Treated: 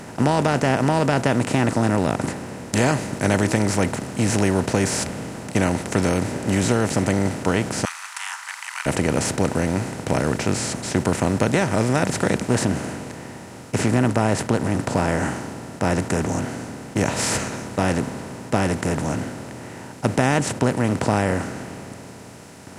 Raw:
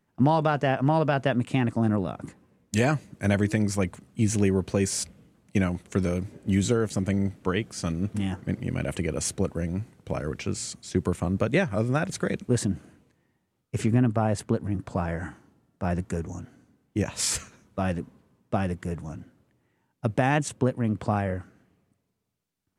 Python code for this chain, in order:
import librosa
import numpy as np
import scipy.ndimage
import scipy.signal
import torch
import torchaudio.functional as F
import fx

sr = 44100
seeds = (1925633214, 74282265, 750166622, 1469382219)

y = fx.bin_compress(x, sr, power=0.4)
y = fx.steep_highpass(y, sr, hz=960.0, slope=48, at=(7.85, 8.86))
y = y * 10.0 ** (-1.0 / 20.0)